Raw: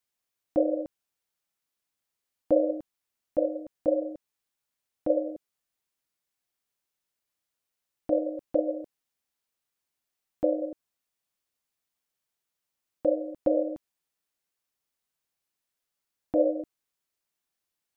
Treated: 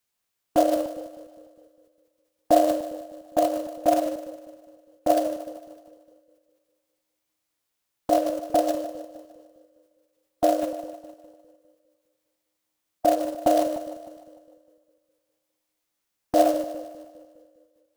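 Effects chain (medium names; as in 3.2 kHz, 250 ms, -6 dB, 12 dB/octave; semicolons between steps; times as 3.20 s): short-mantissa float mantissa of 2-bit; two-band feedback delay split 400 Hz, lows 203 ms, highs 151 ms, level -12.5 dB; formant shift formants +4 st; trim +5 dB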